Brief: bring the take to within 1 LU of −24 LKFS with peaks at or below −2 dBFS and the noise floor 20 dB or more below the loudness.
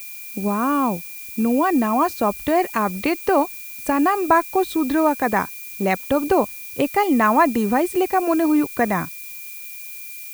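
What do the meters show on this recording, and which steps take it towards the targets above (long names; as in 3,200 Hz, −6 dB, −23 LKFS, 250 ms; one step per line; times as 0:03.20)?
interfering tone 2,400 Hz; level of the tone −40 dBFS; background noise floor −35 dBFS; target noise floor −41 dBFS; integrated loudness −20.5 LKFS; sample peak −3.5 dBFS; target loudness −24.0 LKFS
→ notch filter 2,400 Hz, Q 30
broadband denoise 6 dB, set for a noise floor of −35 dBFS
level −3.5 dB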